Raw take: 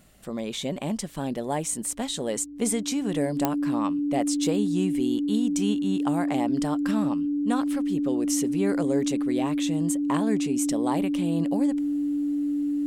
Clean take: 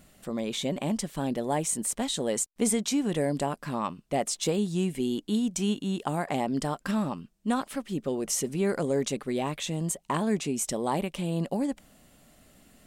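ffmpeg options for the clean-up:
-af "adeclick=t=4,bandreject=f=51.7:t=h:w=4,bandreject=f=103.4:t=h:w=4,bandreject=f=155.1:t=h:w=4,bandreject=f=206.8:t=h:w=4,bandreject=f=258.5:t=h:w=4,bandreject=f=290:w=30"

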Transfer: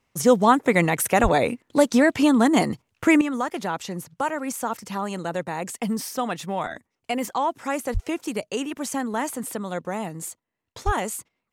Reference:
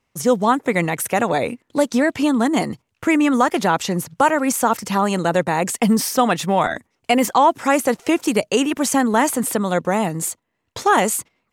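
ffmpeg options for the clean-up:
-filter_complex "[0:a]asplit=3[s0][s1][s2];[s0]afade=t=out:st=1.22:d=0.02[s3];[s1]highpass=f=140:w=0.5412,highpass=f=140:w=1.3066,afade=t=in:st=1.22:d=0.02,afade=t=out:st=1.34:d=0.02[s4];[s2]afade=t=in:st=1.34:d=0.02[s5];[s3][s4][s5]amix=inputs=3:normalize=0,asplit=3[s6][s7][s8];[s6]afade=t=out:st=7.93:d=0.02[s9];[s7]highpass=f=140:w=0.5412,highpass=f=140:w=1.3066,afade=t=in:st=7.93:d=0.02,afade=t=out:st=8.05:d=0.02[s10];[s8]afade=t=in:st=8.05:d=0.02[s11];[s9][s10][s11]amix=inputs=3:normalize=0,asplit=3[s12][s13][s14];[s12]afade=t=out:st=10.85:d=0.02[s15];[s13]highpass=f=140:w=0.5412,highpass=f=140:w=1.3066,afade=t=in:st=10.85:d=0.02,afade=t=out:st=10.97:d=0.02[s16];[s14]afade=t=in:st=10.97:d=0.02[s17];[s15][s16][s17]amix=inputs=3:normalize=0,asetnsamples=n=441:p=0,asendcmd='3.21 volume volume 10dB',volume=1"

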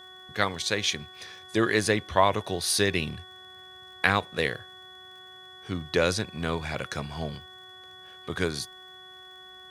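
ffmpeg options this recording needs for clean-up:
-af "adeclick=t=4,bandreject=f=371.2:t=h:w=4,bandreject=f=742.4:t=h:w=4,bandreject=f=1113.6:t=h:w=4,bandreject=f=1484.8:t=h:w=4,bandreject=f=1856:t=h:w=4,bandreject=f=3400:w=30"

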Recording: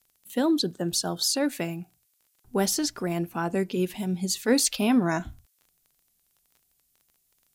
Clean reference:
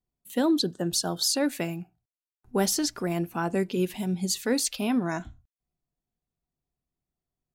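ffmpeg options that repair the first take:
-af "adeclick=t=4,agate=range=0.0891:threshold=0.000708,asetnsamples=n=441:p=0,asendcmd='4.48 volume volume -4dB',volume=1"

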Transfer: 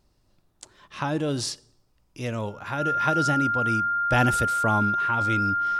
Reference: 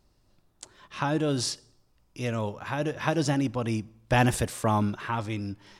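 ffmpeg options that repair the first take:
-af "bandreject=f=1400:w=30,asetnsamples=n=441:p=0,asendcmd='5.21 volume volume -4.5dB',volume=1"

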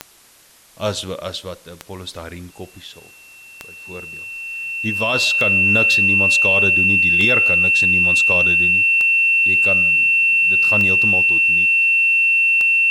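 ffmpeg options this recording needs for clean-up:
-af "adeclick=t=4,bandreject=f=2700:w=30,agate=range=0.0891:threshold=0.0158"

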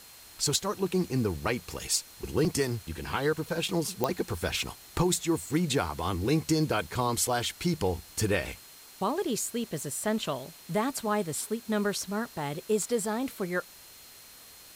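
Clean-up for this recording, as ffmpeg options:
-af "adeclick=t=4,bandreject=f=4200:w=30,afftdn=nr=24:nf=-51"

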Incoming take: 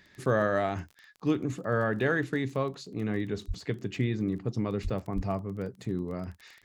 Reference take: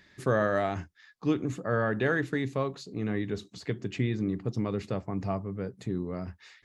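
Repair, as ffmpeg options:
-filter_complex "[0:a]adeclick=t=4,asplit=3[s0][s1][s2];[s0]afade=t=out:st=3.47:d=0.02[s3];[s1]highpass=f=140:w=0.5412,highpass=f=140:w=1.3066,afade=t=in:st=3.47:d=0.02,afade=t=out:st=3.59:d=0.02[s4];[s2]afade=t=in:st=3.59:d=0.02[s5];[s3][s4][s5]amix=inputs=3:normalize=0,asplit=3[s6][s7][s8];[s6]afade=t=out:st=4.83:d=0.02[s9];[s7]highpass=f=140:w=0.5412,highpass=f=140:w=1.3066,afade=t=in:st=4.83:d=0.02,afade=t=out:st=4.95:d=0.02[s10];[s8]afade=t=in:st=4.95:d=0.02[s11];[s9][s10][s11]amix=inputs=3:normalize=0,asplit=3[s12][s13][s14];[s12]afade=t=out:st=5.15:d=0.02[s15];[s13]highpass=f=140:w=0.5412,highpass=f=140:w=1.3066,afade=t=in:st=5.15:d=0.02,afade=t=out:st=5.27:d=0.02[s16];[s14]afade=t=in:st=5.27:d=0.02[s17];[s15][s16][s17]amix=inputs=3:normalize=0"

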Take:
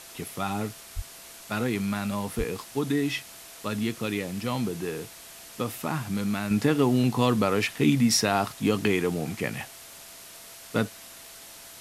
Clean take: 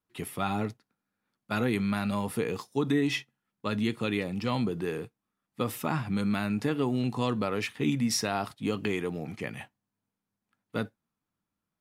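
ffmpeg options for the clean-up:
-filter_complex "[0:a]bandreject=f=670:w=30,asplit=3[s0][s1][s2];[s0]afade=t=out:st=0.95:d=0.02[s3];[s1]highpass=f=140:w=0.5412,highpass=f=140:w=1.3066,afade=t=in:st=0.95:d=0.02,afade=t=out:st=1.07:d=0.02[s4];[s2]afade=t=in:st=1.07:d=0.02[s5];[s3][s4][s5]amix=inputs=3:normalize=0,asplit=3[s6][s7][s8];[s6]afade=t=out:st=2.37:d=0.02[s9];[s7]highpass=f=140:w=0.5412,highpass=f=140:w=1.3066,afade=t=in:st=2.37:d=0.02,afade=t=out:st=2.49:d=0.02[s10];[s8]afade=t=in:st=2.49:d=0.02[s11];[s9][s10][s11]amix=inputs=3:normalize=0,afwtdn=0.0063,asetnsamples=n=441:p=0,asendcmd='6.51 volume volume -6dB',volume=1"

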